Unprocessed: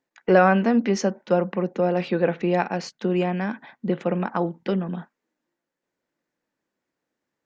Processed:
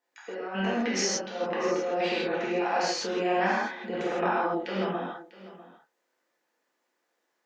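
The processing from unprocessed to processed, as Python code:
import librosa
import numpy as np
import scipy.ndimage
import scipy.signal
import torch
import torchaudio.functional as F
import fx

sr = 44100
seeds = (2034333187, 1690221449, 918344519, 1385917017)

y = scipy.signal.sosfilt(scipy.signal.butter(2, 440.0, 'highpass', fs=sr, output='sos'), x)
y = fx.over_compress(y, sr, threshold_db=-30.0, ratio=-1.0)
y = y + 10.0 ** (-17.5 / 20.0) * np.pad(y, (int(647 * sr / 1000.0), 0))[:len(y)]
y = fx.rev_gated(y, sr, seeds[0], gate_ms=190, shape='flat', drr_db=-8.0)
y = y * librosa.db_to_amplitude(-6.5)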